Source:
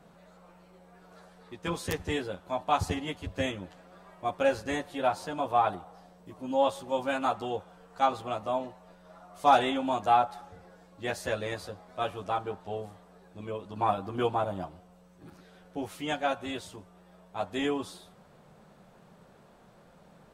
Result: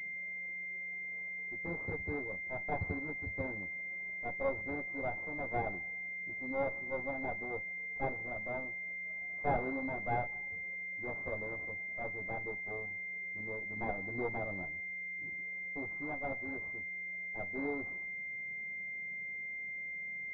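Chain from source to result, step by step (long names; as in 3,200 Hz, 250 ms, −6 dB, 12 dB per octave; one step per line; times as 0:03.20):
lower of the sound and its delayed copy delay 0.39 ms
switching amplifier with a slow clock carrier 2,100 Hz
level −6.5 dB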